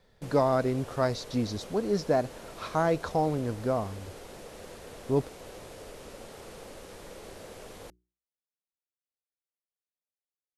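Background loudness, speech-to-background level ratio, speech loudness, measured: -46.0 LUFS, 16.5 dB, -29.5 LUFS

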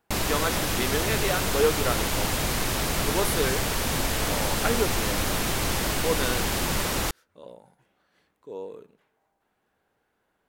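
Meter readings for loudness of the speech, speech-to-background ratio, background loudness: -30.5 LUFS, -4.5 dB, -26.0 LUFS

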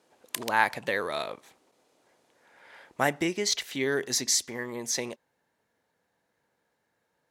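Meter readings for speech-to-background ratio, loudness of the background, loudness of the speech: 10.0 dB, -38.0 LUFS, -28.0 LUFS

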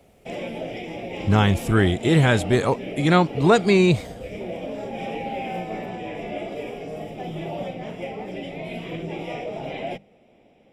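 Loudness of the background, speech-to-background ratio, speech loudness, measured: -32.5 LUFS, 13.0 dB, -19.5 LUFS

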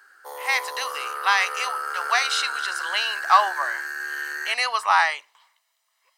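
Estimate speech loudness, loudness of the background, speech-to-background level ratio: -23.0 LUFS, -29.5 LUFS, 6.5 dB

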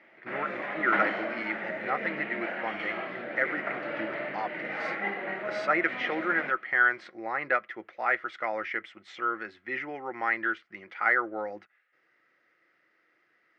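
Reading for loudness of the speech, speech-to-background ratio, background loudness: -30.5 LUFS, 3.5 dB, -34.0 LUFS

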